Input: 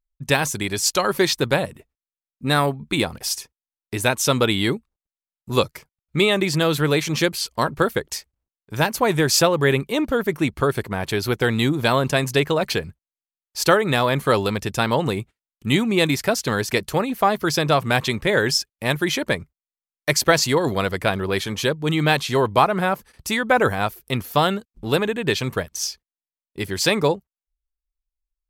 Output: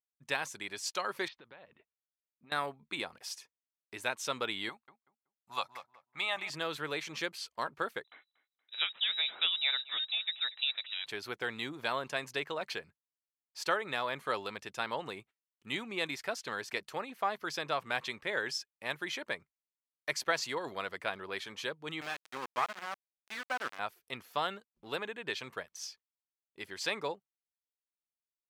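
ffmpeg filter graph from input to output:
-filter_complex "[0:a]asettb=1/sr,asplit=3[s0][s1][s2];[s0]atrim=end=1.284[s3];[s1]atrim=start=1.28:end=2.52,asetpts=PTS-STARTPTS,afade=t=in:d=0.004:c=qsin,afade=t=out:st=1.236:d=0.004:c=qsin,lowpass=f=3800:w=0.5412,lowpass=f=3800:w=1.3066,acompressor=threshold=0.0224:ratio=10:attack=3.2:release=140:knee=1:detection=peak[s4];[s2]atrim=start=2.516[s5];[s3][s4]acrossfade=d=0.004:c1=hsin:c2=qsin[s6];[s6][s5]acrossfade=d=0.004:c1=qsin:c2=hsin,asettb=1/sr,asplit=3[s7][s8][s9];[s7]atrim=end=4.694[s10];[s8]atrim=start=4.69:end=6.5,asetpts=PTS-STARTPTS,afade=t=in:d=0.004:c=qsin,afade=t=out:st=1.806:d=0.004:c=qsin,lowshelf=f=570:t=q:w=3:g=-8.5,asplit=2[s11][s12];[s12]adelay=188,lowpass=f=1800:p=1,volume=0.282,asplit=2[s13][s14];[s14]adelay=188,lowpass=f=1800:p=1,volume=0.23,asplit=2[s15][s16];[s16]adelay=188,lowpass=f=1800:p=1,volume=0.23[s17];[s11][s13][s15][s17]amix=inputs=4:normalize=0,atrim=end_sample=79821[s18];[s9]atrim=start=6.496[s19];[s10][s18]acrossfade=d=0.004:c1=hsin:c2=qsin[s20];[s20][s19]acrossfade=d=0.004:c1=qsin:c2=hsin,asettb=1/sr,asplit=3[s21][s22][s23];[s21]atrim=end=8.044[s24];[s22]atrim=start=8.04:end=11.06,asetpts=PTS-STARTPTS,afade=t=in:d=0.004:c=qsin,afade=t=out:st=3.016:d=0.004:c=qsin,lowpass=f=3400:t=q:w=0.5098,lowpass=f=3400:t=q:w=0.6013,lowpass=f=3400:t=q:w=0.9,lowpass=f=3400:t=q:w=2.563,afreqshift=-4000,aecho=1:1:236|472|708:0.106|0.0466|0.0205,atrim=end_sample=133182[s25];[s23]atrim=start=11.056[s26];[s24][s25]acrossfade=d=0.004:c1=hsin:c2=qsin[s27];[s27][s26]acrossfade=d=0.004:c1=qsin:c2=hsin,asettb=1/sr,asplit=3[s28][s29][s30];[s28]atrim=end=22.014[s31];[s29]atrim=start=22.01:end=23.79,asetpts=PTS-STARTPTS,afade=t=in:d=0.004:c=qsin,afade=t=out:st=1.776:d=0.004:c=qsin,highpass=f=150:w=0.5412,highpass=f=150:w=1.3066,equalizer=f=260:t=q:w=4:g=6,equalizer=f=430:t=q:w=4:g=-7,equalizer=f=1200:t=q:w=4:g=5,equalizer=f=3900:t=q:w=4:g=-4,lowpass=f=9100:w=0.5412,lowpass=f=9100:w=1.3066,aeval=exprs='val(0)*gte(abs(val(0)),0.119)':c=same,aeval=exprs='(tanh(1.78*val(0)+0.7)-tanh(0.7))/1.78':c=same[s32];[s30]atrim=start=23.786[s33];[s31][s32]acrossfade=d=0.004:c1=hsin:c2=qsin[s34];[s34][s33]acrossfade=d=0.004:c1=qsin:c2=hsin,highpass=f=1500:p=1,aemphasis=mode=reproduction:type=75kf,volume=0.422"

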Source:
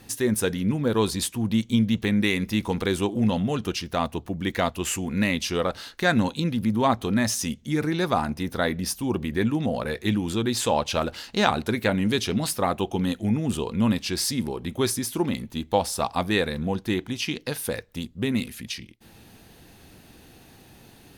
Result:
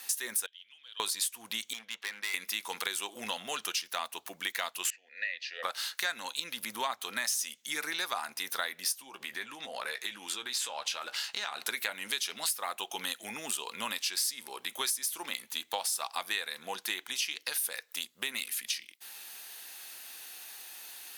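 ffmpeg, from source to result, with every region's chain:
-filter_complex "[0:a]asettb=1/sr,asplit=3[s0][s1][s2];[s0]atrim=end=0.464[s3];[s1]atrim=start=0.46:end=1,asetpts=PTS-STARTPTS,afade=t=in:d=0.004:c=qsin,afade=t=out:st=0.536:d=0.004:c=qsin,deesser=1,bandpass=f=3100:t=q:w=14[s4];[s2]atrim=start=0.996[s5];[s3][s4]acrossfade=d=0.004:c1=hsin:c2=qsin[s6];[s6][s5]acrossfade=d=0.004:c1=qsin:c2=hsin,asettb=1/sr,asplit=3[s7][s8][s9];[s7]atrim=end=1.734[s10];[s8]atrim=start=1.73:end=2.34,asetpts=PTS-STARTPTS,afade=t=in:d=0.004:c=qsin,afade=t=out:st=0.606:d=0.004:c=qsin,bandpass=f=2400:t=q:w=0.51,highshelf=f=2100:g=-12,volume=37.6,asoftclip=hard,volume=0.0266[s11];[s9]atrim=start=2.336[s12];[s10][s11]acrossfade=d=0.004:c1=hsin:c2=qsin[s13];[s13][s12]acrossfade=d=0.004:c1=qsin:c2=hsin,asettb=1/sr,asplit=3[s14][s15][s16];[s14]atrim=end=4.904[s17];[s15]atrim=start=4.9:end=5.63,asetpts=PTS-STARTPTS,afade=t=in:d=0.004:c=qsin,afade=t=out:st=0.726:d=0.004:c=qsin,asplit=3[s18][s19][s20];[s18]bandpass=f=530:t=q:w=8,volume=1[s21];[s19]bandpass=f=1840:t=q:w=8,volume=0.501[s22];[s20]bandpass=f=2480:t=q:w=8,volume=0.355[s23];[s21][s22][s23]amix=inputs=3:normalize=0,highpass=260,equalizer=f=360:t=q:w=4:g=-9,equalizer=f=530:t=q:w=4:g=-6,equalizer=f=1100:t=q:w=4:g=-8,equalizer=f=1900:t=q:w=4:g=5,equalizer=f=3000:t=q:w=4:g=-4,equalizer=f=4400:t=q:w=4:g=9,lowpass=f=6300:w=0.5412,lowpass=f=6300:w=1.3066[s24];[s16]atrim=start=5.626[s25];[s17][s24]acrossfade=d=0.004:c1=hsin:c2=qsin[s26];[s26][s25]acrossfade=d=0.004:c1=qsin:c2=hsin,asettb=1/sr,asplit=3[s27][s28][s29];[s27]atrim=end=8.924[s30];[s28]atrim=start=8.92:end=11.62,asetpts=PTS-STARTPTS,afade=t=in:d=0.004:c=qsin,afade=t=out:st=2.696:d=0.004:c=qsin,acompressor=threshold=0.0398:ratio=6:attack=3.2:release=140:knee=1:detection=peak,highshelf=f=9300:g=-10,asplit=2[s31][s32];[s32]adelay=15,volume=0.299[s33];[s31][s33]amix=inputs=2:normalize=0,atrim=end_sample=119070[s34];[s29]atrim=start=11.616[s35];[s30][s34]acrossfade=d=0.004:c1=hsin:c2=qsin[s36];[s36][s35]acrossfade=d=0.004:c1=qsin:c2=hsin,highpass=1200,highshelf=f=6400:g=10,acompressor=threshold=0.0158:ratio=4,volume=1.68"

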